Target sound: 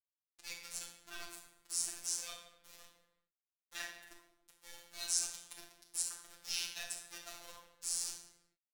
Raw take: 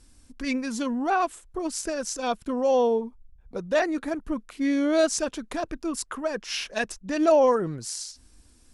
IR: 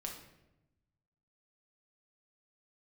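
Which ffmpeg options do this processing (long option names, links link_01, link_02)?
-filter_complex "[0:a]aderivative,acrossover=split=110|1100[link_01][link_02][link_03];[link_02]acompressor=threshold=-52dB:ratio=5[link_04];[link_01][link_04][link_03]amix=inputs=3:normalize=0,aecho=1:1:64|76:0.211|0.158,aeval=exprs='val(0)*gte(abs(val(0)),0.0106)':channel_layout=same,flanger=delay=2.1:depth=2.2:regen=63:speed=2:shape=sinusoidal[link_05];[1:a]atrim=start_sample=2205,afade=type=out:start_time=0.41:duration=0.01,atrim=end_sample=18522,asetrate=35280,aresample=44100[link_06];[link_05][link_06]afir=irnorm=-1:irlink=0,afftfilt=real='hypot(re,im)*cos(PI*b)':imag='0':win_size=1024:overlap=0.75,volume=6.5dB"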